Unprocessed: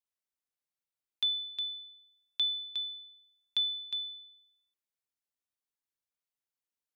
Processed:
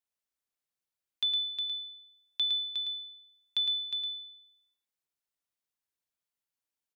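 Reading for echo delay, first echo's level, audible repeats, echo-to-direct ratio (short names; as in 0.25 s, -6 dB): 0.11 s, -6.5 dB, 1, -6.5 dB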